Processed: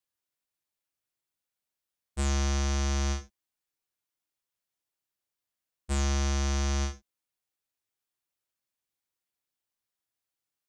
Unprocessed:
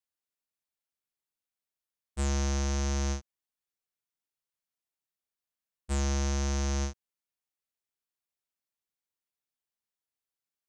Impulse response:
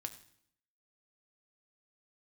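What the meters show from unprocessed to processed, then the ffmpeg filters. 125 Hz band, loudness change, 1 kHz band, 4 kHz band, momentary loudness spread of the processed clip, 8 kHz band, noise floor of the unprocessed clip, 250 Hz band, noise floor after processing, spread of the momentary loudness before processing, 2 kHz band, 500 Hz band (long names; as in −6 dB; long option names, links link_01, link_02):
can't be measured, +1.5 dB, +2.5 dB, +3.5 dB, 9 LU, +1.0 dB, below −85 dBFS, 0.0 dB, below −85 dBFS, 7 LU, +3.0 dB, −0.5 dB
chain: -filter_complex "[1:a]atrim=start_sample=2205,atrim=end_sample=3969[link_01];[0:a][link_01]afir=irnorm=-1:irlink=0,volume=5.5dB"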